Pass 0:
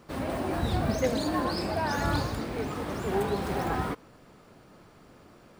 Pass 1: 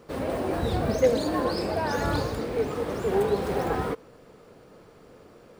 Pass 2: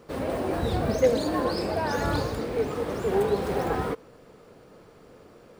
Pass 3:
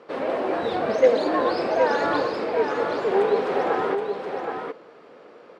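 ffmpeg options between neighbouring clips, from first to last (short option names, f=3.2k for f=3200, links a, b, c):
-af "equalizer=f=470:w=3:g=10"
-af anull
-filter_complex "[0:a]highpass=370,lowpass=3.3k,asplit=2[a][b];[b]aecho=0:1:772:0.501[c];[a][c]amix=inputs=2:normalize=0,volume=5.5dB"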